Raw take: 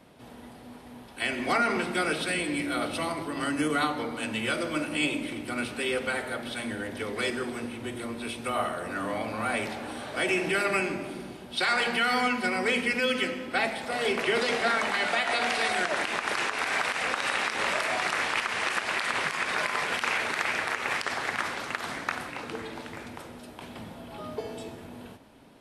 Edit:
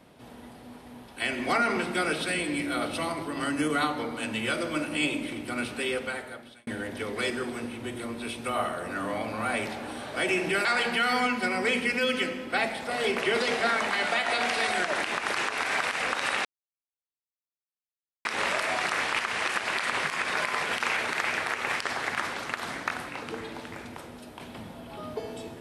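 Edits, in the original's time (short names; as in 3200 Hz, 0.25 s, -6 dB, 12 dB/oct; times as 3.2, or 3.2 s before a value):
5.83–6.67 fade out
10.65–11.66 cut
17.46 insert silence 1.80 s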